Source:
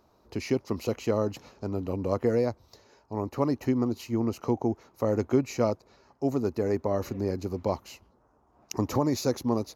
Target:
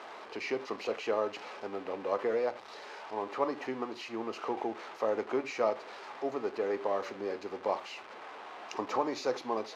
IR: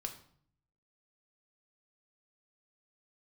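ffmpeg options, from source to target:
-filter_complex "[0:a]aeval=exprs='val(0)+0.5*0.0133*sgn(val(0))':c=same,highpass=590,lowpass=3k,asplit=2[a][b];[1:a]atrim=start_sample=2205,atrim=end_sample=4410[c];[b][c]afir=irnorm=-1:irlink=0,volume=2.5dB[d];[a][d]amix=inputs=2:normalize=0,volume=-5.5dB"

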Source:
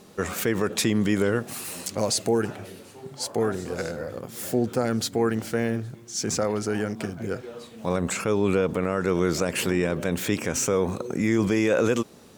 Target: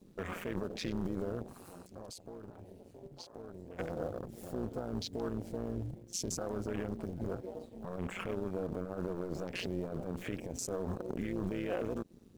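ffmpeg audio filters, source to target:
-filter_complex "[0:a]adynamicequalizer=threshold=0.00447:dfrequency=1400:dqfactor=3.7:tfrequency=1400:tqfactor=3.7:attack=5:release=100:ratio=0.375:range=3:mode=cutabove:tftype=bell,alimiter=limit=-23dB:level=0:latency=1:release=97,lowshelf=f=61:g=6,acrusher=bits=2:mode=log:mix=0:aa=0.000001,afwtdn=0.0112,tremolo=f=180:d=0.788,asettb=1/sr,asplit=3[a][b][c];[a]atrim=end=1.464[d];[b]atrim=start=1.46:end=3.79,asetpts=PTS-STARTPTS,afade=t=in:d=0.004:c=qsin,afade=t=out:st=2.326:d=0.004:c=qsin,acompressor=threshold=-48dB:ratio=2.5[e];[c]atrim=start=3.786[f];[d][e]acrossfade=d=0.004:c1=hsin:c2=qsin[g];[g][f]acrossfade=d=0.004:c1=qsin:c2=hsin,volume=-1.5dB"

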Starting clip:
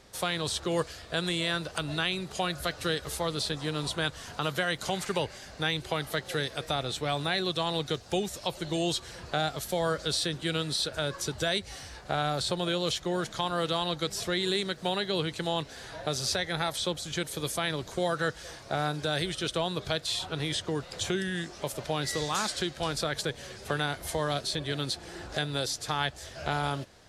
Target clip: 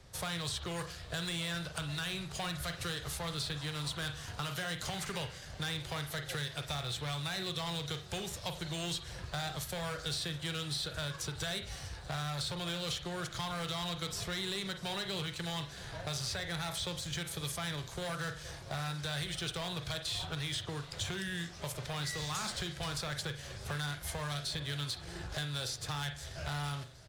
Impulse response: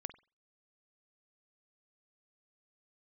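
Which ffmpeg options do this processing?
-filter_complex "[0:a]asplit=2[a][b];[b]acrusher=bits=5:mix=0:aa=0.5,volume=-9.5dB[c];[a][c]amix=inputs=2:normalize=0,lowshelf=f=180:t=q:w=1.5:g=8[d];[1:a]atrim=start_sample=2205,asetrate=48510,aresample=44100[e];[d][e]afir=irnorm=-1:irlink=0,acrossover=split=170|6000[f][g][h];[g]asoftclip=type=hard:threshold=-29.5dB[i];[f][i][h]amix=inputs=3:normalize=0,acrossover=split=1000|3200[j][k][l];[j]acompressor=threshold=-40dB:ratio=4[m];[k]acompressor=threshold=-40dB:ratio=4[n];[l]acompressor=threshold=-39dB:ratio=4[o];[m][n][o]amix=inputs=3:normalize=0,aecho=1:1:644|1288|1932|2576|3220:0.1|0.057|0.0325|0.0185|0.0106"

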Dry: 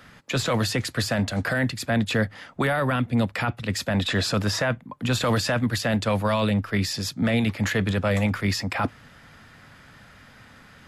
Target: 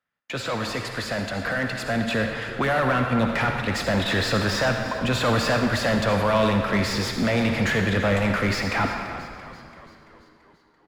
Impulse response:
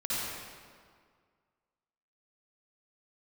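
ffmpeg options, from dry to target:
-filter_complex "[0:a]lowpass=f=2.9k:p=1,aemphasis=mode=production:type=75fm,agate=range=-34dB:threshold=-42dB:ratio=16:detection=peak,dynaudnorm=f=410:g=11:m=11.5dB,asoftclip=type=tanh:threshold=-10.5dB,asplit=2[a][b];[b]highpass=f=720:p=1,volume=11dB,asoftclip=type=tanh:threshold=-15.5dB[c];[a][c]amix=inputs=2:normalize=0,lowpass=f=1.5k:p=1,volume=-6dB,asplit=7[d][e][f][g][h][i][j];[e]adelay=337,afreqshift=-86,volume=-14.5dB[k];[f]adelay=674,afreqshift=-172,volume=-19.2dB[l];[g]adelay=1011,afreqshift=-258,volume=-24dB[m];[h]adelay=1348,afreqshift=-344,volume=-28.7dB[n];[i]adelay=1685,afreqshift=-430,volume=-33.4dB[o];[j]adelay=2022,afreqshift=-516,volume=-38.2dB[p];[d][k][l][m][n][o][p]amix=inputs=7:normalize=0,asplit=2[q][r];[1:a]atrim=start_sample=2205,lowshelf=f=300:g=-9.5[s];[r][s]afir=irnorm=-1:irlink=0,volume=-8dB[t];[q][t]amix=inputs=2:normalize=0,volume=-4dB"

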